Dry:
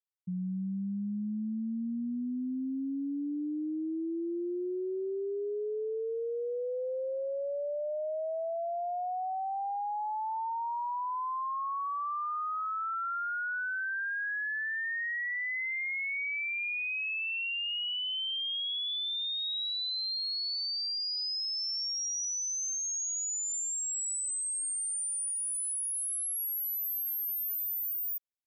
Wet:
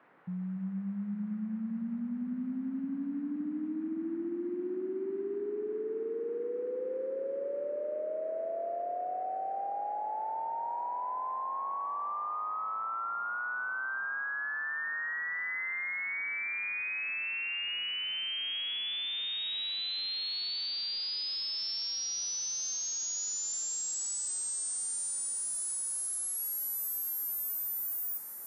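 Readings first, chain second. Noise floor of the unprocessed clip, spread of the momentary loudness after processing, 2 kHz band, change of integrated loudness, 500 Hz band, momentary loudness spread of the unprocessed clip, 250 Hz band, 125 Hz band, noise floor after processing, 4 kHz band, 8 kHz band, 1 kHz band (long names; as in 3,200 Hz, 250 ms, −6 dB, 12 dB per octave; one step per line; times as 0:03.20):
−34 dBFS, 4 LU, −1.5 dB, −1.5 dB, −1.0 dB, 4 LU, −1.0 dB, can't be measured, −37 dBFS, −1.5 dB, −1.5 dB, −1.5 dB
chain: delay that swaps between a low-pass and a high-pass 283 ms, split 870 Hz, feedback 86%, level −10 dB
noise in a band 150–1,800 Hz −61 dBFS
level −2 dB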